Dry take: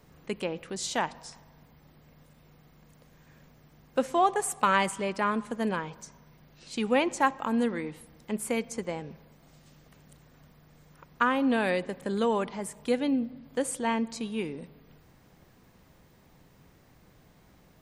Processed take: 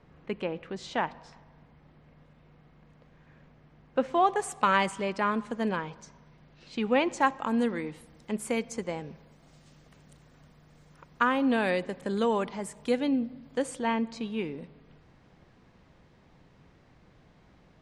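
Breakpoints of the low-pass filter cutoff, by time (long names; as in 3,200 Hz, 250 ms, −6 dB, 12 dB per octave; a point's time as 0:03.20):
0:04.00 2,900 Hz
0:04.44 6,500 Hz
0:05.55 6,500 Hz
0:06.81 3,400 Hz
0:07.33 8,900 Hz
0:13.46 8,900 Hz
0:13.93 4,300 Hz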